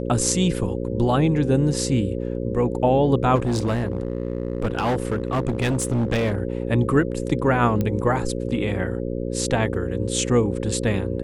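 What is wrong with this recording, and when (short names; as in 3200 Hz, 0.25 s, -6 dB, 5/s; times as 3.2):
buzz 60 Hz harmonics 9 -27 dBFS
3.35–6.4 clipped -18 dBFS
7.81 pop -12 dBFS
9.74 gap 2.6 ms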